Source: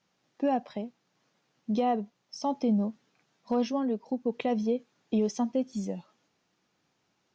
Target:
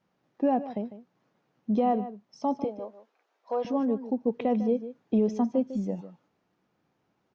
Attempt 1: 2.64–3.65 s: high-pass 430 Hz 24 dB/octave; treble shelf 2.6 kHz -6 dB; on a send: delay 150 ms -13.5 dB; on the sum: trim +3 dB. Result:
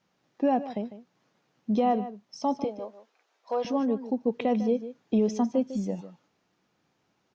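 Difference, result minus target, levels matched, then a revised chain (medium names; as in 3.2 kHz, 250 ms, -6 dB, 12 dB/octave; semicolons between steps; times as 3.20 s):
4 kHz band +7.0 dB
2.64–3.65 s: high-pass 430 Hz 24 dB/octave; treble shelf 2.6 kHz -17 dB; on a send: delay 150 ms -13.5 dB; on the sum: trim +3 dB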